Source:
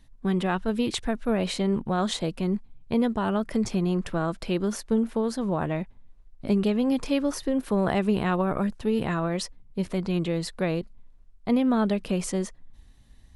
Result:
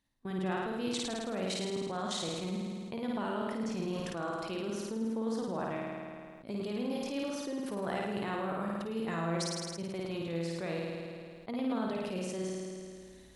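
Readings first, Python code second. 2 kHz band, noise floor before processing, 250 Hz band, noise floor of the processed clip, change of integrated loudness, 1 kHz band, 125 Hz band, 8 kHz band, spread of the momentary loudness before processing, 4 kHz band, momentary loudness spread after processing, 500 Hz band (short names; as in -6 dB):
-6.5 dB, -53 dBFS, -10.5 dB, -51 dBFS, -9.5 dB, -7.0 dB, -10.5 dB, -5.0 dB, 7 LU, -5.0 dB, 7 LU, -8.0 dB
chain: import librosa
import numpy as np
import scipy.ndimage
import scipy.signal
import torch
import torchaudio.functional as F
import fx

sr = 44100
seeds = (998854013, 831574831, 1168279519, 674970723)

p1 = fx.highpass(x, sr, hz=240.0, slope=6)
p2 = fx.dynamic_eq(p1, sr, hz=5900.0, q=1.3, threshold_db=-49.0, ratio=4.0, max_db=5)
p3 = fx.level_steps(p2, sr, step_db=15)
p4 = p3 + fx.room_flutter(p3, sr, wall_m=9.2, rt60_s=1.2, dry=0)
p5 = fx.sustainer(p4, sr, db_per_s=25.0)
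y = p5 * 10.0 ** (-7.5 / 20.0)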